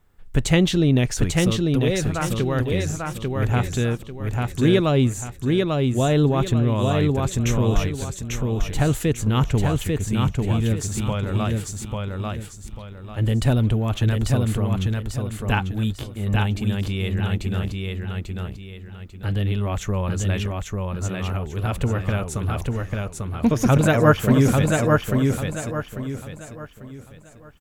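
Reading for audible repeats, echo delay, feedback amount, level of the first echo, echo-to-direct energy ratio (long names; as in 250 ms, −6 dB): 4, 844 ms, 33%, −3.0 dB, −2.5 dB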